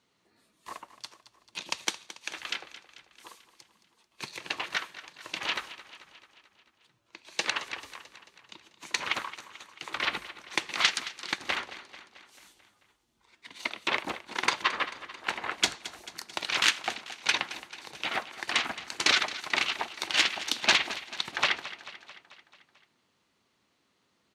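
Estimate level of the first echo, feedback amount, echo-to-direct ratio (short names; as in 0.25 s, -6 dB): -15.0 dB, 60%, -13.0 dB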